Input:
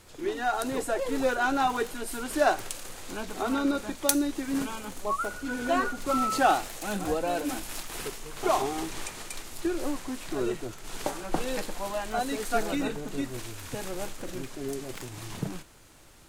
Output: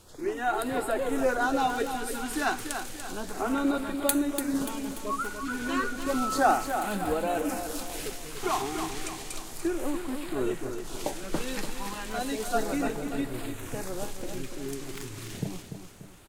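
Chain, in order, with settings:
auto-filter notch sine 0.32 Hz 560–6,200 Hz
on a send: repeating echo 291 ms, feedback 46%, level −8 dB

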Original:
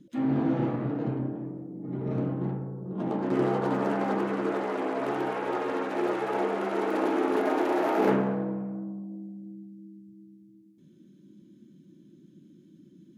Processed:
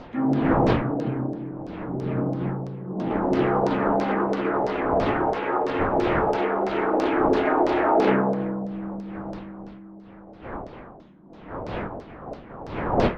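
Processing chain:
wind on the microphone 630 Hz −36 dBFS
auto-filter low-pass saw down 3 Hz 590–5,500 Hz
floating-point word with a short mantissa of 8 bits
level +3 dB

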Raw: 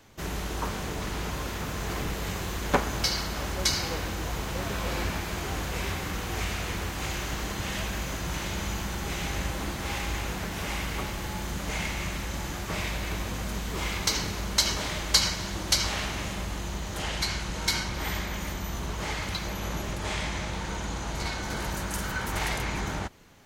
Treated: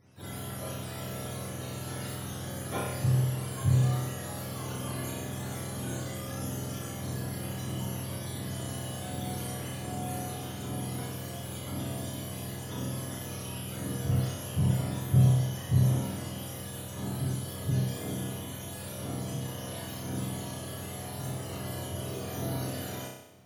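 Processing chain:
frequency axis turned over on the octave scale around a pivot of 770 Hz
transient designer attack −5 dB, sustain +1 dB
flutter between parallel walls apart 5.4 metres, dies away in 0.83 s
level −7 dB

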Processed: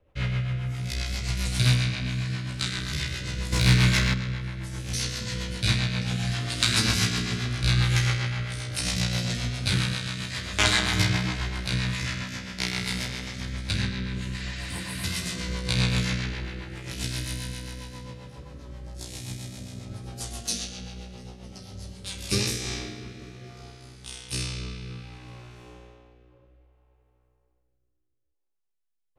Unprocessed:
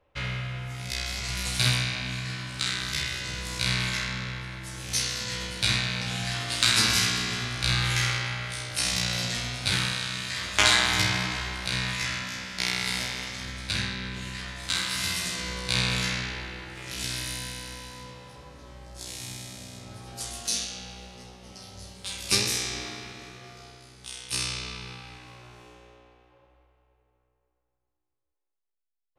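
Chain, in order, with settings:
low-shelf EQ 380 Hz +8.5 dB
0:03.52–0:04.14: leveller curve on the samples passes 2
rotating-speaker cabinet horn 7.5 Hz, later 0.6 Hz, at 0:22.02
0:14.43–0:15.02: healed spectral selection 1,100–7,900 Hz before

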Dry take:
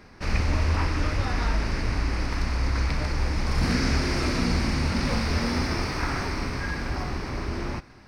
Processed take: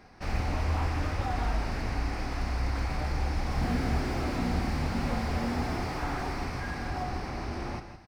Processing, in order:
parametric band 750 Hz +10 dB 0.29 octaves
single-tap delay 163 ms −10.5 dB
convolution reverb, pre-delay 3 ms, DRR 12 dB
slew-rate limiting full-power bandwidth 55 Hz
level −5.5 dB

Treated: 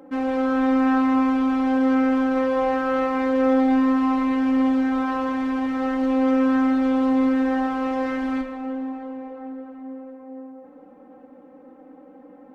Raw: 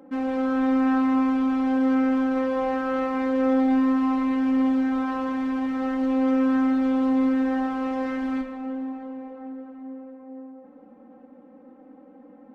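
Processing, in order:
parametric band 220 Hz −11.5 dB 0.24 octaves
level +4 dB

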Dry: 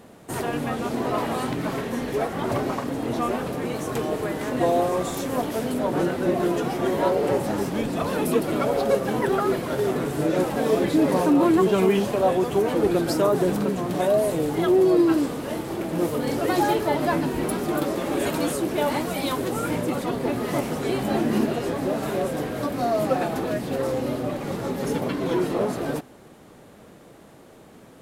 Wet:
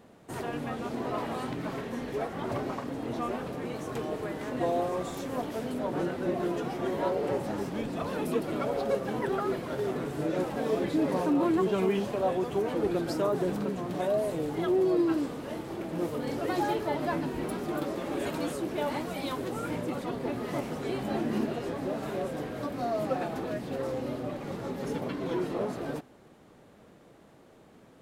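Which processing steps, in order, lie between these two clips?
parametric band 12,000 Hz −6.5 dB 1.3 octaves
level −7.5 dB

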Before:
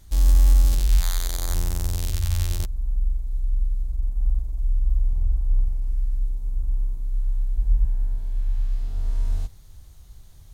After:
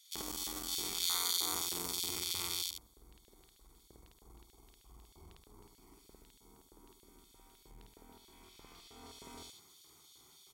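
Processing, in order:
comb filter 0.9 ms, depth 99%
auto-filter high-pass square 3.2 Hz 400–3,500 Hz
on a send: loudspeakers that aren't time-aligned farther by 18 metres 0 dB, 43 metres −5 dB
on the sum: saturating transformer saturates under 2,400 Hz
level −8 dB

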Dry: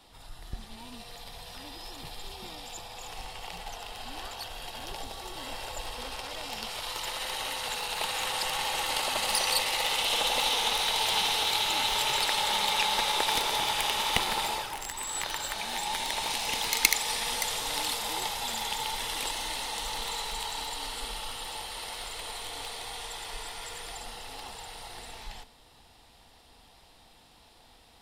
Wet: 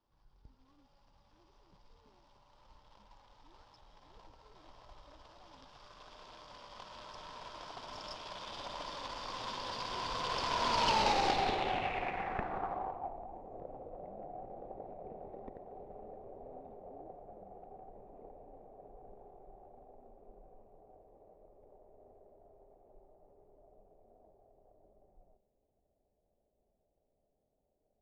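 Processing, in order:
running median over 25 samples
source passing by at 0:11.03, 52 m/s, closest 15 metres
in parallel at −1.5 dB: downward compressor, threshold −59 dBFS, peak gain reduction 26.5 dB
on the sum: soft clipping −31 dBFS, distortion −14 dB
low-pass filter sweep 5,000 Hz → 560 Hz, 0:11.25–0:13.48
level +7 dB

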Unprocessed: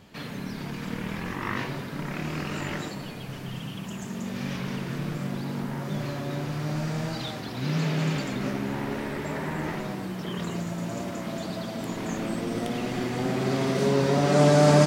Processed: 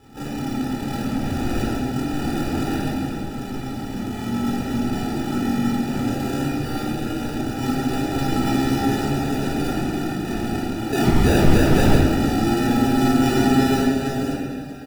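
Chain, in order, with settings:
compressor whose output falls as the input rises −26 dBFS, ratio −0.5
drawn EQ curve 100 Hz 0 dB, 160 Hz −16 dB, 250 Hz +13 dB, 510 Hz −2 dB, 3,000 Hz +4 dB, 4,900 Hz −6 dB
sound drawn into the spectrogram rise, 0:10.92–0:11.97, 1,700–6,000 Hz −20 dBFS
dynamic equaliser 240 Hz, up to −4 dB, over −34 dBFS, Q 5.6
decimation without filtering 41×
pitch-shifted copies added −12 semitones −11 dB
convolution reverb RT60 1.4 s, pre-delay 16 ms, DRR −4.5 dB
level −6.5 dB

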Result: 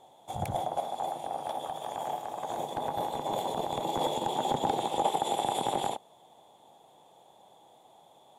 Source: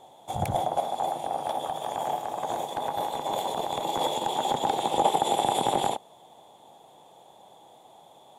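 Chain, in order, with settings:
0:02.57–0:04.85: low-shelf EQ 480 Hz +7.5 dB
level −5 dB

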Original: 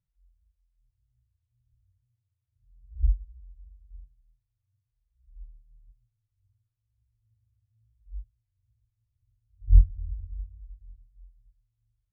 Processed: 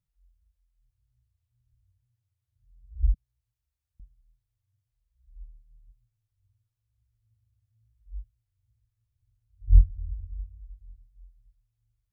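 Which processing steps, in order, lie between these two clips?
0:03.14–0:04.00: high-pass filter 150 Hz 24 dB per octave

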